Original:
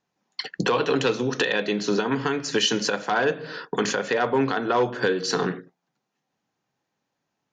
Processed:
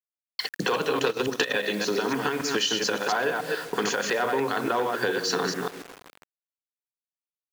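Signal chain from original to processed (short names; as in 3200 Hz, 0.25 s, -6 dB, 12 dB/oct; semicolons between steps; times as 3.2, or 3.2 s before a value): reverse delay 0.142 s, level -4 dB; tape echo 0.161 s, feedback 87%, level -22 dB, low-pass 2200 Hz; bit-crush 7-bit; 0.97–1.63 transient shaper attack +9 dB, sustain -8 dB; low shelf 210 Hz -9.5 dB; compressor 4:1, threshold -23 dBFS, peak gain reduction 8.5 dB; gain +1 dB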